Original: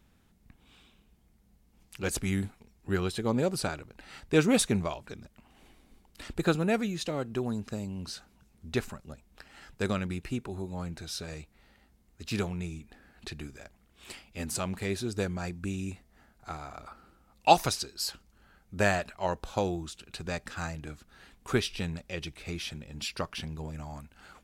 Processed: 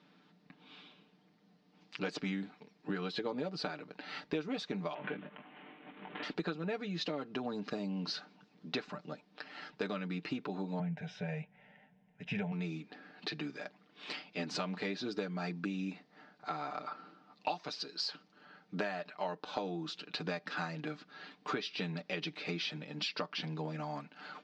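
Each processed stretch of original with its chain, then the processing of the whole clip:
4.94–6.23 s: CVSD coder 16 kbps + doubling 20 ms -5 dB + swell ahead of each attack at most 34 dB/s
10.79–12.52 s: de-esser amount 80% + tone controls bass +11 dB, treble -8 dB + static phaser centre 1.2 kHz, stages 6
whole clip: elliptic band-pass 190–4700 Hz, stop band 40 dB; comb 6.7 ms, depth 68%; compression 12:1, threshold -37 dBFS; trim +3.5 dB

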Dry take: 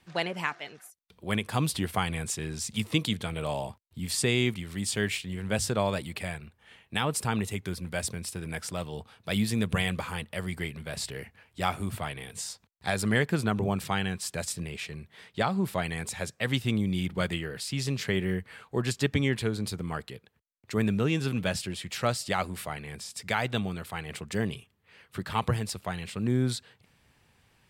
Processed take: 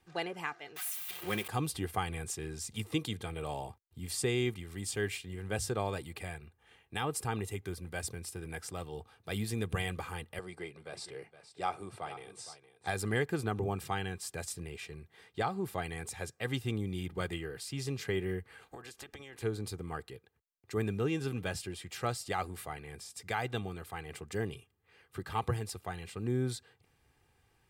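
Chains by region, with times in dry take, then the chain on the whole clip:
0.76–1.48 s: zero-crossing glitches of -18.5 dBFS + resonant high shelf 4.2 kHz -10.5 dB, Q 1.5 + comb 5.6 ms, depth 57%
10.39–12.87 s: cabinet simulation 200–8700 Hz, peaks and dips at 250 Hz -8 dB, 570 Hz +3 dB, 1.8 kHz -6 dB, 3 kHz -4 dB, 6.9 kHz -8 dB + delay 464 ms -13.5 dB
18.61–19.42 s: spectral peaks clipped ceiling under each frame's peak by 18 dB + compression 20:1, threshold -37 dBFS
whole clip: peaking EQ 3.5 kHz -4.5 dB 2 oct; comb 2.5 ms, depth 49%; trim -5.5 dB

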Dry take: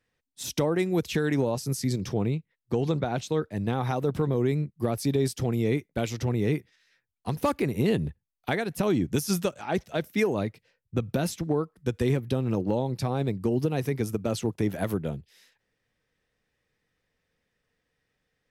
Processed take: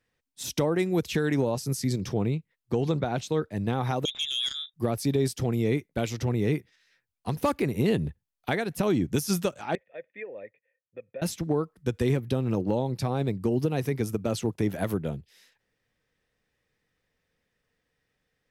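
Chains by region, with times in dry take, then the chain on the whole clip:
4.05–4.74 s: peaking EQ 160 Hz -9.5 dB 1.6 oct + frequency inversion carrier 3.7 kHz + transformer saturation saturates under 3 kHz
9.75–11.22 s: cascade formant filter e + tilt EQ +3.5 dB/octave
whole clip: none

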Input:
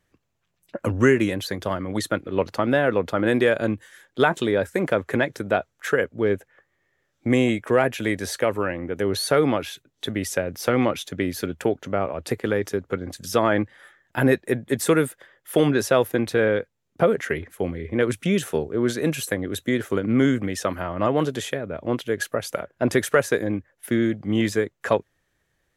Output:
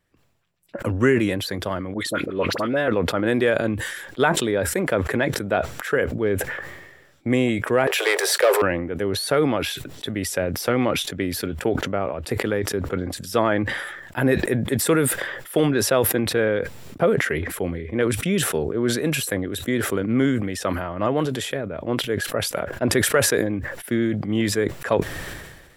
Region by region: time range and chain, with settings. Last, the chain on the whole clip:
1.94–2.88 s: high-pass 170 Hz 6 dB/octave + peaking EQ 810 Hz -7 dB 0.26 oct + phase dispersion highs, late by 47 ms, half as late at 1.3 kHz
7.87–8.62 s: waveshaping leveller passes 3 + steep high-pass 370 Hz 96 dB/octave
whole clip: band-stop 6.4 kHz, Q 8.6; decay stretcher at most 45 dB/s; trim -1 dB

